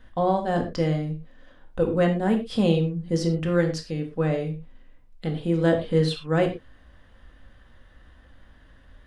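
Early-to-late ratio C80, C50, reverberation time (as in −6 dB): 14.0 dB, 8.5 dB, non-exponential decay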